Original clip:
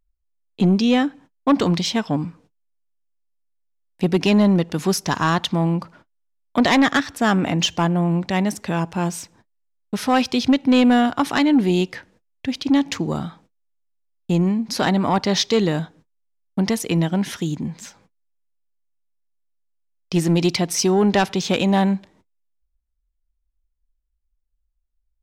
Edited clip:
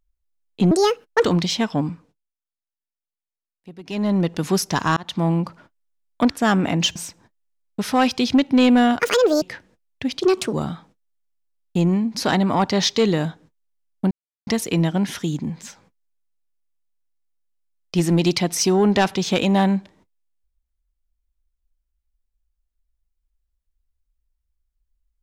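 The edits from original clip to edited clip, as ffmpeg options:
ffmpeg -i in.wav -filter_complex "[0:a]asplit=13[link_01][link_02][link_03][link_04][link_05][link_06][link_07][link_08][link_09][link_10][link_11][link_12][link_13];[link_01]atrim=end=0.714[link_14];[link_02]atrim=start=0.71:end=1.6,asetpts=PTS-STARTPTS,asetrate=73206,aresample=44100[link_15];[link_03]atrim=start=1.596:end=2.71,asetpts=PTS-STARTPTS,afade=type=out:start_time=0.624:duration=0.49:silence=0.0891251[link_16];[link_04]atrim=start=2.71:end=4.19,asetpts=PTS-STARTPTS,volume=-21dB[link_17];[link_05]atrim=start=4.19:end=5.32,asetpts=PTS-STARTPTS,afade=type=in:duration=0.49:silence=0.0891251,afade=type=out:start_time=1.126:duration=0.004:curve=hsin[link_18];[link_06]atrim=start=5.32:end=6.652,asetpts=PTS-STARTPTS,afade=type=in:duration=0.27[link_19];[link_07]atrim=start=7.088:end=7.752[link_20];[link_08]atrim=start=9.098:end=11.144[link_21];[link_09]atrim=start=11.14:end=11.85,asetpts=PTS-STARTPTS,asetrate=74088,aresample=44100[link_22];[link_10]atrim=start=11.846:end=12.644[link_23];[link_11]atrim=start=12.64:end=13.07,asetpts=PTS-STARTPTS,asetrate=59094,aresample=44100,atrim=end_sample=14151,asetpts=PTS-STARTPTS[link_24];[link_12]atrim=start=13.066:end=16.65,asetpts=PTS-STARTPTS,afade=type=out:start_time=3.58:duration=0.004:curve=hsin,apad=pad_dur=0.36[link_25];[link_13]atrim=start=16.65,asetpts=PTS-STARTPTS,afade=type=in:duration=0.004:curve=hsin[link_26];[link_14][link_15]acrossfade=duration=0.004:curve1=hsin:curve2=hsin[link_27];[link_16][link_17][link_18][link_19]concat=n=4:v=0:a=1[link_28];[link_27][link_28]acrossfade=duration=0.004:curve1=hsin:curve2=hsin[link_29];[link_29][link_20]acrossfade=duration=0.004:curve1=hsin:curve2=hsin[link_30];[link_30][link_21]acrossfade=duration=0.004:curve1=hsin:curve2=hsin[link_31];[link_31][link_22]acrossfade=duration=0.004:curve1=hsin:curve2=hsin[link_32];[link_32][link_23]acrossfade=duration=0.004:curve1=hsin:curve2=hsin[link_33];[link_33][link_24]acrossfade=duration=0.004:curve1=hsin:curve2=hsin[link_34];[link_25][link_26]concat=n=2:v=0:a=1[link_35];[link_34][link_35]acrossfade=duration=0.004:curve1=hsin:curve2=hsin" out.wav

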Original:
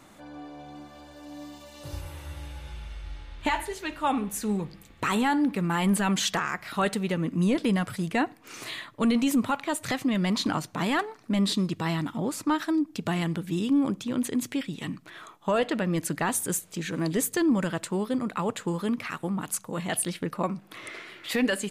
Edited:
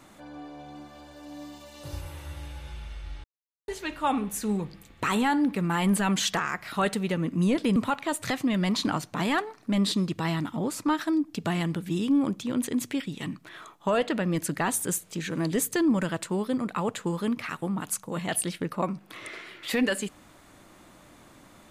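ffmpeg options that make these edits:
ffmpeg -i in.wav -filter_complex "[0:a]asplit=4[link_01][link_02][link_03][link_04];[link_01]atrim=end=3.24,asetpts=PTS-STARTPTS,afade=type=out:start_time=3.236:duration=0.004:curve=hsin[link_05];[link_02]atrim=start=3.24:end=3.68,asetpts=PTS-STARTPTS,volume=0[link_06];[link_03]atrim=start=3.68:end=7.762,asetpts=PTS-STARTPTS,afade=type=in:duration=0.004:curve=hsin[link_07];[link_04]atrim=start=9.368[link_08];[link_05][link_06][link_07]concat=n=3:v=0:a=1[link_09];[link_09][link_08]acrossfade=duration=0.004:curve1=hsin:curve2=hsin" out.wav

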